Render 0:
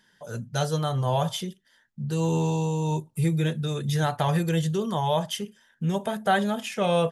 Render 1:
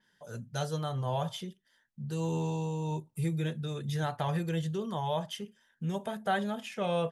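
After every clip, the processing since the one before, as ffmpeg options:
ffmpeg -i in.wav -af "adynamicequalizer=threshold=0.00398:dfrequency=4800:dqfactor=0.7:tfrequency=4800:tqfactor=0.7:attack=5:release=100:ratio=0.375:range=3:mode=cutabove:tftype=highshelf,volume=-7.5dB" out.wav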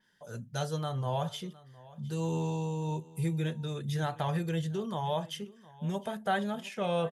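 ffmpeg -i in.wav -af "aecho=1:1:712:0.0891" out.wav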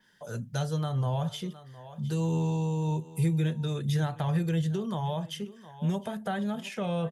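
ffmpeg -i in.wav -filter_complex "[0:a]acrossover=split=230[link_01][link_02];[link_02]acompressor=threshold=-42dB:ratio=2.5[link_03];[link_01][link_03]amix=inputs=2:normalize=0,volume=6dB" out.wav

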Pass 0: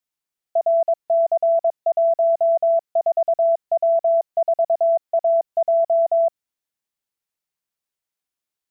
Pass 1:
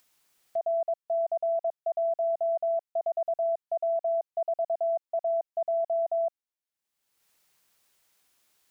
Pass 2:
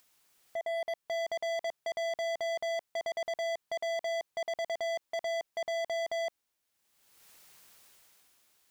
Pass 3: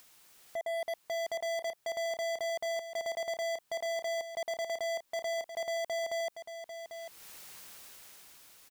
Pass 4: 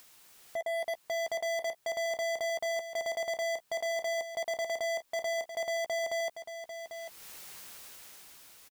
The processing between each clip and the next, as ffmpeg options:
ffmpeg -i in.wav -af "acompressor=mode=upward:threshold=-38dB:ratio=2.5,lowshelf=frequency=350:gain=-4,volume=-9dB" out.wav
ffmpeg -i in.wav -af "alimiter=level_in=4.5dB:limit=-24dB:level=0:latency=1:release=46,volume=-4.5dB,dynaudnorm=framelen=150:gausssize=11:maxgain=11dB,asoftclip=type=hard:threshold=-32dB" out.wav
ffmpeg -i in.wav -filter_complex "[0:a]acrossover=split=7200[link_01][link_02];[link_01]alimiter=level_in=17dB:limit=-24dB:level=0:latency=1:release=118,volume=-17dB[link_03];[link_03][link_02]amix=inputs=2:normalize=0,aecho=1:1:795:0.335,volume=8.5dB" out.wav
ffmpeg -i in.wav -filter_complex "[0:a]asplit=2[link_01][link_02];[link_02]adelay=14,volume=-12dB[link_03];[link_01][link_03]amix=inputs=2:normalize=0,volume=2dB" out.wav

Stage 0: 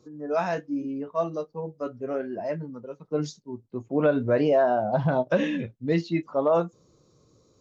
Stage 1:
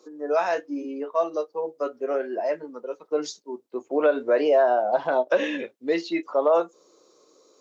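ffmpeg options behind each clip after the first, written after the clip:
ffmpeg -i in.wav -filter_complex "[0:a]highpass=frequency=350:width=0.5412,highpass=frequency=350:width=1.3066,asplit=2[link_01][link_02];[link_02]acompressor=threshold=-31dB:ratio=6,volume=1.5dB[link_03];[link_01][link_03]amix=inputs=2:normalize=0" out.wav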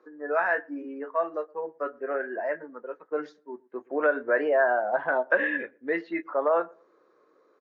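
ffmpeg -i in.wav -filter_complex "[0:a]lowpass=frequency=1700:width_type=q:width=5.2,asplit=2[link_01][link_02];[link_02]adelay=117,lowpass=frequency=950:poles=1,volume=-24dB,asplit=2[link_03][link_04];[link_04]adelay=117,lowpass=frequency=950:poles=1,volume=0.26[link_05];[link_01][link_03][link_05]amix=inputs=3:normalize=0,volume=-5.5dB" out.wav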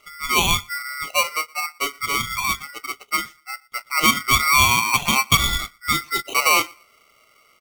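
ffmpeg -i in.wav -af "aeval=exprs='val(0)*sgn(sin(2*PI*1700*n/s))':channel_layout=same,volume=6.5dB" out.wav

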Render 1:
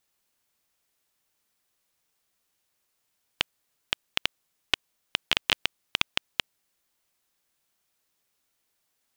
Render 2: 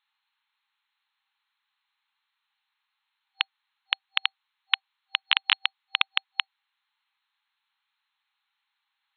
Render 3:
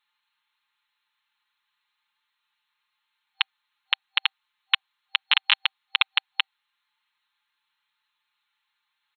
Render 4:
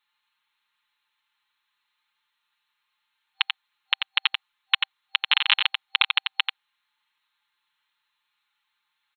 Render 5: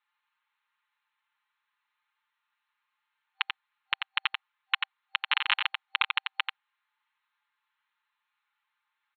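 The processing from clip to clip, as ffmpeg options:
ffmpeg -i in.wav -af "afftfilt=real='re*between(b*sr/4096,780,4300)':imag='im*between(b*sr/4096,780,4300)':win_size=4096:overlap=0.75,volume=3dB" out.wav
ffmpeg -i in.wav -af "aecho=1:1:5.7:0.82" out.wav
ffmpeg -i in.wav -af "aecho=1:1:89:0.531" out.wav
ffmpeg -i in.wav -af "highpass=710,lowpass=2000" out.wav

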